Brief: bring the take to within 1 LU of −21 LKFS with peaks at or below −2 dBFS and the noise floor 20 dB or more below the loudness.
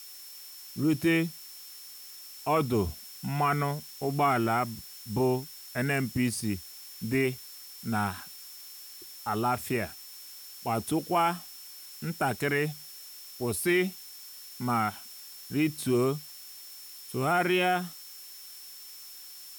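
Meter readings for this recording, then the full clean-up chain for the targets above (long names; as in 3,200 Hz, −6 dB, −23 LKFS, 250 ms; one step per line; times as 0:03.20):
interfering tone 5,400 Hz; level of the tone −49 dBFS; background noise floor −47 dBFS; target noise floor −50 dBFS; integrated loudness −29.5 LKFS; sample peak −15.0 dBFS; target loudness −21.0 LKFS
→ notch filter 5,400 Hz, Q 30
broadband denoise 6 dB, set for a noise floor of −47 dBFS
level +8.5 dB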